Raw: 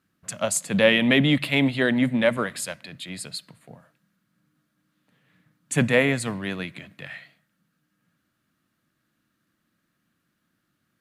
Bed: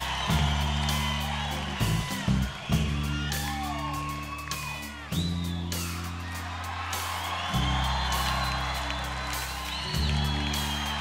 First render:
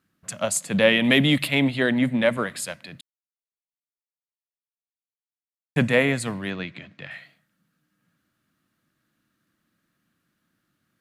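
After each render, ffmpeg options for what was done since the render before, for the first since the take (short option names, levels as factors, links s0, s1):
-filter_complex "[0:a]asettb=1/sr,asplit=3[s0][s1][s2];[s0]atrim=end=1.044[s3];[s1]atrim=start=1.04:end=1.48,asetpts=PTS-STARTPTS,afade=t=in:d=0.004:c=qsin,afade=t=out:st=0.436:d=0.004:c=qsin,highshelf=f=5500:g=11[s4];[s2]atrim=start=1.476[s5];[s3][s4]acrossfade=d=0.004:c1=hsin:c2=qsin[s6];[s6][s5]acrossfade=d=0.004:c1=qsin:c2=hsin,asettb=1/sr,asplit=3[s7][s8][s9];[s7]atrim=end=6.504[s10];[s8]atrim=start=6.5:end=7.11,asetpts=PTS-STARTPTS,afade=t=in:d=0.004:c=qsin,afade=t=out:st=0.606:d=0.004:c=qsin,lowpass=f=6100:w=0.5412,lowpass=f=6100:w=1.3066[s11];[s9]atrim=start=7.106[s12];[s10][s11]acrossfade=d=0.004:c1=hsin:c2=qsin[s13];[s13][s12]acrossfade=d=0.004:c1=qsin:c2=hsin,asplit=3[s14][s15][s16];[s14]atrim=end=3.01,asetpts=PTS-STARTPTS,afade=t=out:st=3.006:d=0.004:c=hsin[s17];[s15]atrim=start=3.01:end=5.76,asetpts=PTS-STARTPTS,volume=0[s18];[s16]atrim=start=5.76,asetpts=PTS-STARTPTS,afade=t=in:d=0.004:c=hsin[s19];[s17][s18][s19]concat=n=3:v=0:a=1"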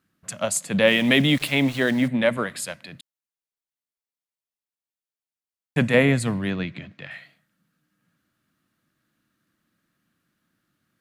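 -filter_complex "[0:a]asettb=1/sr,asplit=3[s0][s1][s2];[s0]atrim=end=0.854[s3];[s1]atrim=start=0.85:end=2.08,asetpts=PTS-STARTPTS,afade=t=in:d=0.004:c=qsin,afade=t=out:st=1.226:d=0.004:c=qsin,aeval=exprs='val(0)*gte(abs(val(0)),0.02)':c=same[s4];[s2]atrim=start=2.076[s5];[s3][s4]acrossfade=d=0.004:c1=hsin:c2=qsin[s6];[s6][s5]acrossfade=d=0.004:c1=qsin:c2=hsin,asettb=1/sr,asplit=3[s7][s8][s9];[s7]atrim=end=5.944[s10];[s8]atrim=start=5.94:end=6.92,asetpts=PTS-STARTPTS,afade=t=in:d=0.004:c=qsin,afade=t=out:st=0.976:d=0.004:c=qsin,lowshelf=f=270:g=8.5[s11];[s9]atrim=start=6.916[s12];[s10][s11]acrossfade=d=0.004:c1=hsin:c2=qsin[s13];[s13][s12]acrossfade=d=0.004:c1=qsin:c2=hsin"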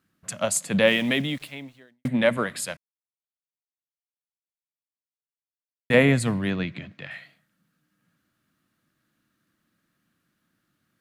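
-filter_complex "[0:a]asplit=4[s0][s1][s2][s3];[s0]atrim=end=2.05,asetpts=PTS-STARTPTS,afade=t=out:st=0.77:d=1.28:c=qua[s4];[s1]atrim=start=2.05:end=2.77,asetpts=PTS-STARTPTS,afade=t=in:d=0.004:c=hsin,afade=t=out:st=0.716:d=0.004:c=hsin[s5];[s2]atrim=start=2.77:end=5.9,asetpts=PTS-STARTPTS,volume=0[s6];[s3]atrim=start=5.9,asetpts=PTS-STARTPTS,afade=t=in:d=0.004:c=hsin[s7];[s4][s5][s6][s7]concat=n=4:v=0:a=1"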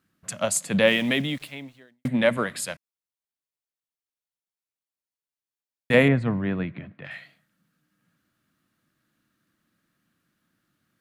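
-filter_complex "[0:a]asettb=1/sr,asplit=3[s0][s1][s2];[s0]atrim=end=6.084[s3];[s1]atrim=start=6.08:end=7.05,asetpts=PTS-STARTPTS,afade=t=in:d=0.004:c=qsin,afade=t=out:st=0.966:d=0.004:c=qsin,lowpass=1800[s4];[s2]atrim=start=7.046[s5];[s3][s4]acrossfade=d=0.004:c1=hsin:c2=qsin[s6];[s6][s5]acrossfade=d=0.004:c1=qsin:c2=hsin"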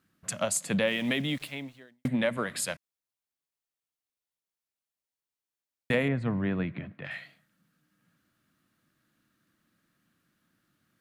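-af "acompressor=threshold=0.0501:ratio=3"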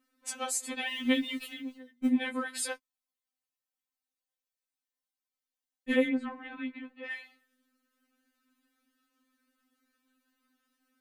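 -af "afftfilt=real='re*3.46*eq(mod(b,12),0)':imag='im*3.46*eq(mod(b,12),0)':win_size=2048:overlap=0.75"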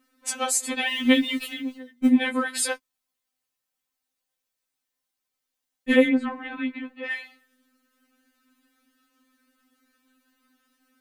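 -af "volume=2.66"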